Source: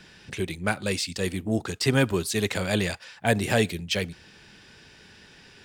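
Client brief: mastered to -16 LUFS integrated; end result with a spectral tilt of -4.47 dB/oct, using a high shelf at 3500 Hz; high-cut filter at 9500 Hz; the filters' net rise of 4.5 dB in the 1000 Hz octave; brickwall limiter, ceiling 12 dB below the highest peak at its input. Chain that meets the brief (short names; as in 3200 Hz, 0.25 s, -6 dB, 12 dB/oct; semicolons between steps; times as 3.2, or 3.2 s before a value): LPF 9500 Hz; bell 1000 Hz +7.5 dB; high shelf 3500 Hz -7 dB; gain +14.5 dB; limiter -3 dBFS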